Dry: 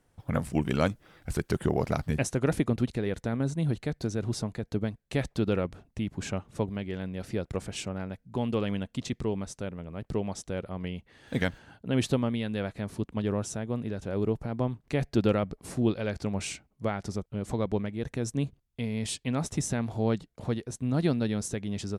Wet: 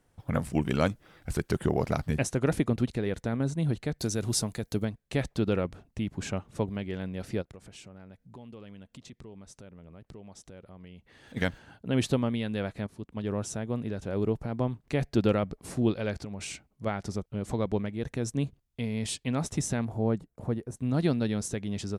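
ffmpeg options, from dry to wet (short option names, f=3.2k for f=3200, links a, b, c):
-filter_complex "[0:a]asettb=1/sr,asplit=3[a][b][c];[a]atrim=end=3.994[d];[b]atrim=start=3.99:end=4.85,asetpts=PTS-STARTPTS,afade=t=in:d=0.004:c=qsin,afade=t=out:st=0.856:d=0.004:c=qsin,aemphasis=mode=production:type=75kf[e];[c]atrim=start=4.846[f];[d][e]acrossfade=d=0.004:c1=hsin:c2=qsin[g];[g][f]acrossfade=d=0.004:c1=qsin:c2=hsin,asplit=3[h][i][j];[h]afade=t=out:st=7.41:d=0.02[k];[i]acompressor=threshold=-49dB:ratio=3:attack=3.2:release=140:knee=1:detection=peak,afade=t=in:st=7.41:d=0.02,afade=t=out:st=11.36:d=0.02[l];[j]afade=t=in:st=11.36:d=0.02[m];[k][l][m]amix=inputs=3:normalize=0,asplit=3[n][o][p];[n]afade=t=out:st=16.22:d=0.02[q];[o]acompressor=threshold=-33dB:ratio=12:attack=3.2:release=140:knee=1:detection=peak,afade=t=in:st=16.22:d=0.02,afade=t=out:st=16.85:d=0.02[r];[p]afade=t=in:st=16.85:d=0.02[s];[q][r][s]amix=inputs=3:normalize=0,asettb=1/sr,asplit=3[t][u][v];[t]atrim=end=19.854[w];[u]atrim=start=19.85:end=20.77,asetpts=PTS-STARTPTS,afade=t=in:d=0.004:c=qsin,afade=t=out:st=0.916:d=0.004:c=qsin,equalizer=f=3.9k:w=0.66:g=-14.5[x];[v]atrim=start=20.766[y];[w][x]acrossfade=d=0.004:c1=hsin:c2=qsin[z];[z][y]acrossfade=d=0.004:c1=qsin:c2=hsin,asplit=2[aa][ab];[aa]atrim=end=12.87,asetpts=PTS-STARTPTS,afade=t=out:st=12.866:d=0.004:c=hsin:silence=0.199526[ac];[ab]atrim=start=12.87,asetpts=PTS-STARTPTS,afade=t=in:d=0.63:silence=0.199526[ad];[ac][ad]concat=n=2:v=0:a=1"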